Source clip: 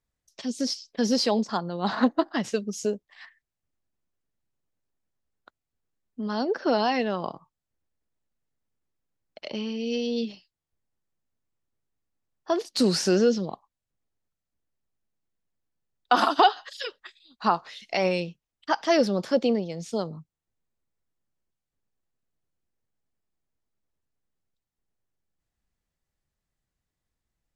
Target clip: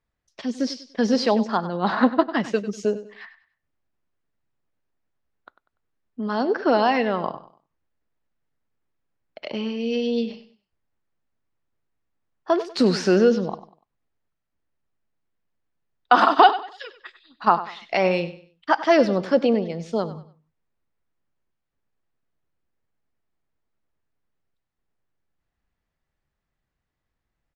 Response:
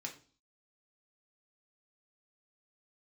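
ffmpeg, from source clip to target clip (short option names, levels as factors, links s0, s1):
-filter_complex "[0:a]lowpass=1600,asplit=3[s0][s1][s2];[s0]afade=t=out:st=16.5:d=0.02[s3];[s1]acompressor=threshold=0.00794:ratio=6,afade=t=in:st=16.5:d=0.02,afade=t=out:st=17.46:d=0.02[s4];[s2]afade=t=in:st=17.46:d=0.02[s5];[s3][s4][s5]amix=inputs=3:normalize=0,crystalizer=i=6.5:c=0,aecho=1:1:97|194|291:0.188|0.0584|0.0181,asplit=2[s6][s7];[1:a]atrim=start_sample=2205,afade=t=out:st=0.17:d=0.01,atrim=end_sample=7938[s8];[s7][s8]afir=irnorm=-1:irlink=0,volume=0.112[s9];[s6][s9]amix=inputs=2:normalize=0,volume=1.41"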